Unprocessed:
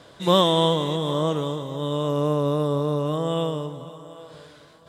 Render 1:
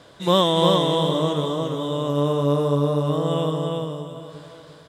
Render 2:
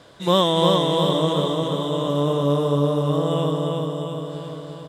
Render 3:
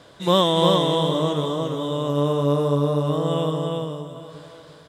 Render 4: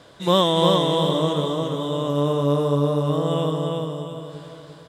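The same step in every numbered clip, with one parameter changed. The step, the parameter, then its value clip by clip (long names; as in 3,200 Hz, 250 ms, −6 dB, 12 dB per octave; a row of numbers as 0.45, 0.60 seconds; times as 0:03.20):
repeating echo, feedback: 24, 62, 15, 40%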